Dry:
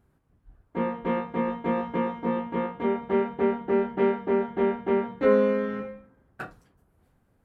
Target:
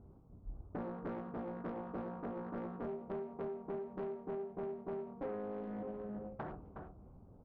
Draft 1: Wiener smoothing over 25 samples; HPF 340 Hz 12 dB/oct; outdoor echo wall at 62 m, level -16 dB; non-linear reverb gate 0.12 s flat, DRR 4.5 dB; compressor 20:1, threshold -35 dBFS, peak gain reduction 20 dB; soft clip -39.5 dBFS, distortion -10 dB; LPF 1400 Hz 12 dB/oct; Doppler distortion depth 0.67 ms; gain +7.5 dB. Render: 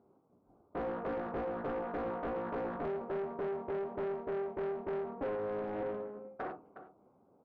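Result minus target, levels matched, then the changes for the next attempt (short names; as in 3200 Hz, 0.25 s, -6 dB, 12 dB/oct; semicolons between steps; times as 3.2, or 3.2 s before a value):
compressor: peak gain reduction -10.5 dB; 250 Hz band -4.0 dB
change: compressor 20:1, threshold -44.5 dBFS, peak gain reduction 30.5 dB; remove: HPF 340 Hz 12 dB/oct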